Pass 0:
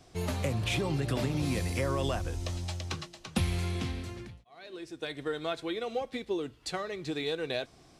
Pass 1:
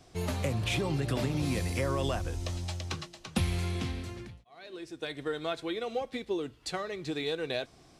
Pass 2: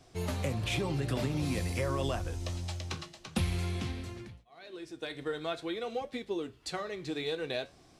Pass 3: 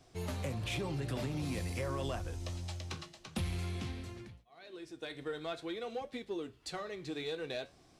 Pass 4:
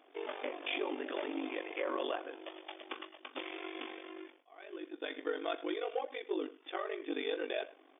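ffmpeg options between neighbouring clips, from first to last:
-af anull
-af "flanger=delay=7.4:depth=9.4:regen=-71:speed=0.49:shape=triangular,volume=1.33"
-af "asoftclip=type=tanh:threshold=0.0596,volume=0.668"
-filter_complex "[0:a]asplit=2[s0][s1];[s1]adelay=100,highpass=300,lowpass=3400,asoftclip=type=hard:threshold=0.0126,volume=0.158[s2];[s0][s2]amix=inputs=2:normalize=0,afftfilt=real='re*between(b*sr/4096,270,3600)':imag='im*between(b*sr/4096,270,3600)':win_size=4096:overlap=0.75,aeval=exprs='val(0)*sin(2*PI*24*n/s)':c=same,volume=2"

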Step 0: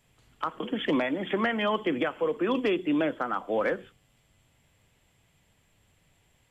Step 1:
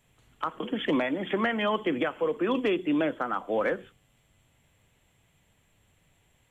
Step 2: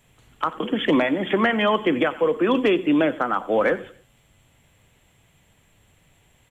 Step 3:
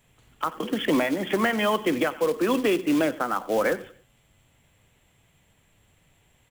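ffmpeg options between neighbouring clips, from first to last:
-af "equalizer=f=4900:t=o:w=0.23:g=-10.5"
-af "aecho=1:1:93|186|279:0.106|0.0403|0.0153,volume=2.24"
-af "acrusher=bits=4:mode=log:mix=0:aa=0.000001,volume=0.668"

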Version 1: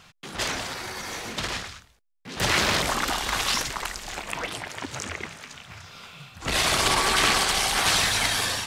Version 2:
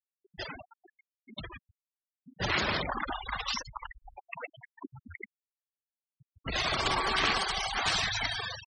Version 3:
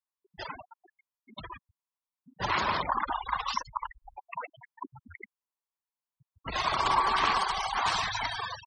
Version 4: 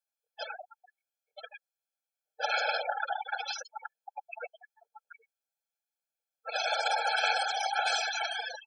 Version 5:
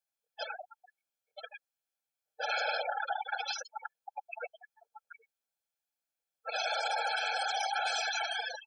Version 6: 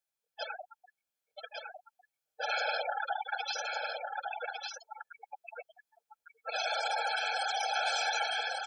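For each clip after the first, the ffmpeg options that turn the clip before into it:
-af "afftfilt=real='re*gte(hypot(re,im),0.0891)':imag='im*gte(hypot(re,im),0.0891)':win_size=1024:overlap=0.75,volume=0.531"
-af "equalizer=f=1000:t=o:w=0.64:g=13.5,volume=0.668"
-af "afftfilt=real='re*eq(mod(floor(b*sr/1024/440),2),1)':imag='im*eq(mod(floor(b*sr/1024/440),2),1)':win_size=1024:overlap=0.75,volume=1.58"
-af "alimiter=limit=0.0668:level=0:latency=1:release=47"
-af "aecho=1:1:1154:0.596"

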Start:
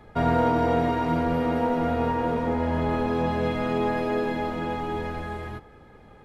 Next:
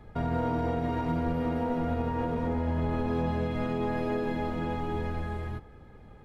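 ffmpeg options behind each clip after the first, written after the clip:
-af "lowshelf=f=200:g=9.5,alimiter=limit=0.178:level=0:latency=1:release=137,volume=0.531"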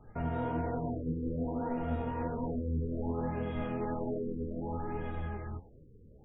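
-af "flanger=delay=6.2:depth=9.9:regen=48:speed=1.2:shape=triangular,afftfilt=real='re*lt(b*sr/1024,510*pow(3800/510,0.5+0.5*sin(2*PI*0.63*pts/sr)))':imag='im*lt(b*sr/1024,510*pow(3800/510,0.5+0.5*sin(2*PI*0.63*pts/sr)))':win_size=1024:overlap=0.75,volume=0.891"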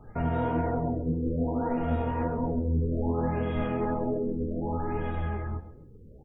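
-af "aecho=1:1:134|268|402:0.158|0.046|0.0133,volume=2"

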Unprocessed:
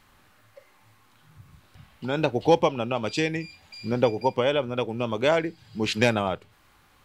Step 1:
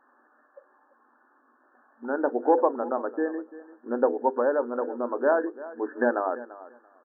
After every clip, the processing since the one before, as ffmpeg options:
-af "bandreject=f=50:t=h:w=6,bandreject=f=100:t=h:w=6,bandreject=f=150:t=h:w=6,bandreject=f=200:t=h:w=6,bandreject=f=250:t=h:w=6,bandreject=f=300:t=h:w=6,bandreject=f=350:t=h:w=6,bandreject=f=400:t=h:w=6,bandreject=f=450:t=h:w=6,bandreject=f=500:t=h:w=6,afftfilt=real='re*between(b*sr/4096,230,1800)':imag='im*between(b*sr/4096,230,1800)':win_size=4096:overlap=0.75,aecho=1:1:341|682:0.141|0.024"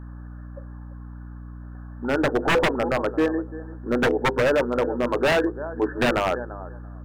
-af "aeval=exprs='val(0)+0.00631*(sin(2*PI*60*n/s)+sin(2*PI*2*60*n/s)/2+sin(2*PI*3*60*n/s)/3+sin(2*PI*4*60*n/s)/4+sin(2*PI*5*60*n/s)/5)':c=same,aeval=exprs='0.0944*(abs(mod(val(0)/0.0944+3,4)-2)-1)':c=same,equalizer=f=730:w=1.5:g=-2,volume=2.37"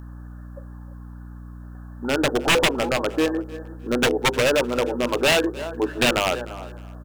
-af "aexciter=amount=2.1:drive=9.1:freq=2500,aecho=1:1:305|610:0.1|0.028"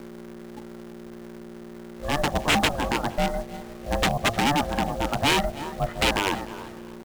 -filter_complex "[0:a]acrossover=split=710|3400[s0][s1][s2];[s0]acrusher=bits=6:mix=0:aa=0.000001[s3];[s3][s1][s2]amix=inputs=3:normalize=0,aeval=exprs='val(0)*sin(2*PI*290*n/s)':c=same"

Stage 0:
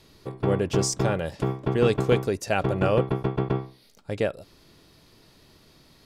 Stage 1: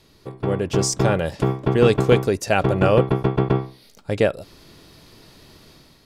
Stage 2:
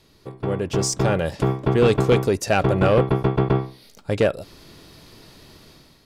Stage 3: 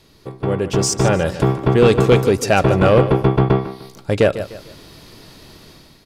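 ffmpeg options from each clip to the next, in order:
-af "dynaudnorm=f=570:g=3:m=2.51"
-af "asoftclip=type=tanh:threshold=0.299,dynaudnorm=f=430:g=5:m=1.41,volume=0.841"
-af "aecho=1:1:150|300|450:0.224|0.0784|0.0274,volume=1.68"

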